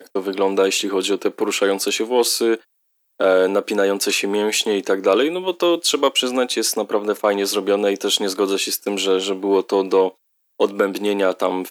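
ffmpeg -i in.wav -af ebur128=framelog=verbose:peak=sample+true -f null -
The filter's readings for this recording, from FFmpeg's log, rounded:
Integrated loudness:
  I:         -19.1 LUFS
  Threshold: -29.3 LUFS
Loudness range:
  LRA:         1.5 LU
  Threshold: -39.2 LUFS
  LRA low:   -20.0 LUFS
  LRA high:  -18.5 LUFS
Sample peak:
  Peak:       -2.9 dBFS
True peak:
  Peak:       -2.9 dBFS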